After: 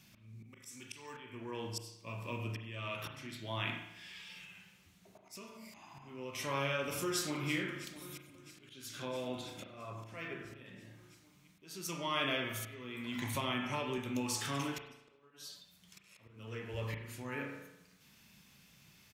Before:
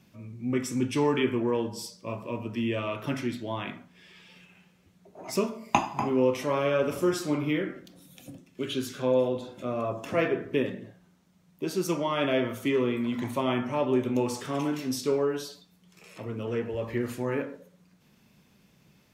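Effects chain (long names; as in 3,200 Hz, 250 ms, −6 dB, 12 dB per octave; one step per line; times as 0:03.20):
downward compressor 2 to 1, threshold −31 dBFS, peak gain reduction 8.5 dB
0:00.44–0:01.20: spectral tilt +2.5 dB per octave
0:14.78–0:15.31: noise gate −27 dBFS, range −40 dB
guitar amp tone stack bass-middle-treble 5-5-5
0:07.02–0:07.51: delay throw 330 ms, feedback 85%, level −14.5 dB
volume swells 511 ms
slap from a distant wall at 17 metres, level −29 dB
convolution reverb RT60 0.85 s, pre-delay 36 ms, DRR 4.5 dB
0:13.35–0:13.98: multiband upward and downward compressor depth 40%
level +11 dB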